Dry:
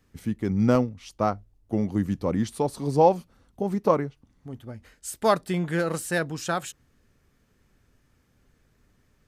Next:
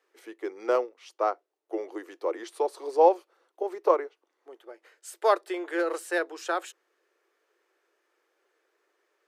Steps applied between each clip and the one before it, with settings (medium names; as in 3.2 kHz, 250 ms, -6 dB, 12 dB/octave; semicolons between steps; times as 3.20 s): Chebyshev high-pass 340 Hz, order 6; treble shelf 4.2 kHz -9 dB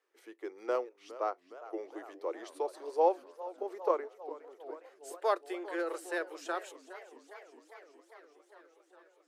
modulated delay 408 ms, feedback 75%, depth 200 cents, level -16 dB; trim -7.5 dB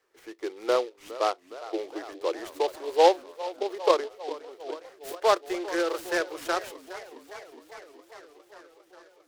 delay time shaken by noise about 3.1 kHz, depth 0.041 ms; trim +8 dB